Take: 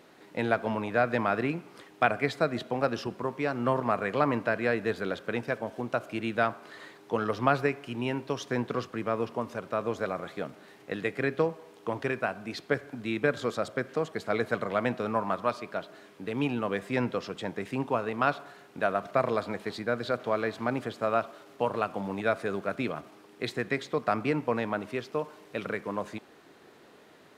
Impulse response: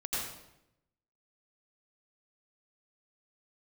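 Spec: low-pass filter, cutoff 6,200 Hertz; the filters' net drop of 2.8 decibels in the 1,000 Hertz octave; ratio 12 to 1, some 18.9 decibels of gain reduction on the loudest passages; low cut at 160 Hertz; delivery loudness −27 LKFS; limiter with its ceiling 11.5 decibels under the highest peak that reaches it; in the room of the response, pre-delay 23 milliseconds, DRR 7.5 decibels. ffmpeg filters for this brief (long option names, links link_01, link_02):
-filter_complex "[0:a]highpass=160,lowpass=6200,equalizer=frequency=1000:width_type=o:gain=-4,acompressor=threshold=-41dB:ratio=12,alimiter=level_in=11dB:limit=-24dB:level=0:latency=1,volume=-11dB,asplit=2[link_01][link_02];[1:a]atrim=start_sample=2205,adelay=23[link_03];[link_02][link_03]afir=irnorm=-1:irlink=0,volume=-12.5dB[link_04];[link_01][link_04]amix=inputs=2:normalize=0,volume=20.5dB"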